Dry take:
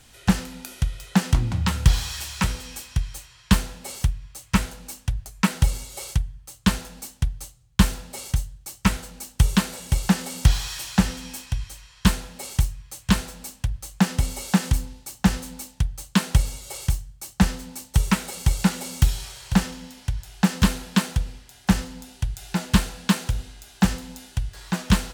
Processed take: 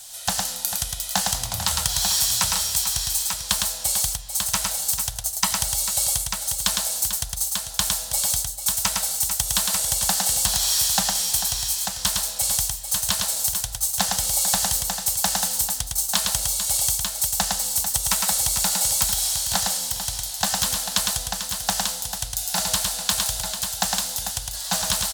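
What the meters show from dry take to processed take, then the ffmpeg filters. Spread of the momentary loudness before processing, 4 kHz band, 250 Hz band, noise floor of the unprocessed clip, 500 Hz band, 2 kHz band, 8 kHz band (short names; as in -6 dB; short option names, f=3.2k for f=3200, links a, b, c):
13 LU, +8.5 dB, -15.5 dB, -53 dBFS, -0.5 dB, -0.5 dB, +14.0 dB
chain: -filter_complex "[0:a]acrossover=split=1800[a][b];[b]aexciter=amount=2.8:drive=8.9:freq=3.4k[c];[a][c]amix=inputs=2:normalize=0,acompressor=threshold=-18dB:ratio=6,lowshelf=f=490:t=q:w=3:g=-10,aecho=1:1:108|444|892:0.668|0.316|0.531"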